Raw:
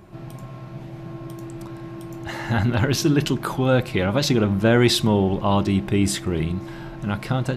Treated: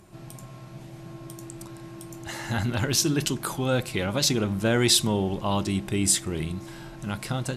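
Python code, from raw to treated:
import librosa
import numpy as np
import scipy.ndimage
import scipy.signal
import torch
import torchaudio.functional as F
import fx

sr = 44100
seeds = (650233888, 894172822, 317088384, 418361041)

y = fx.peak_eq(x, sr, hz=8900.0, db=14.5, octaves=1.8)
y = F.gain(torch.from_numpy(y), -6.5).numpy()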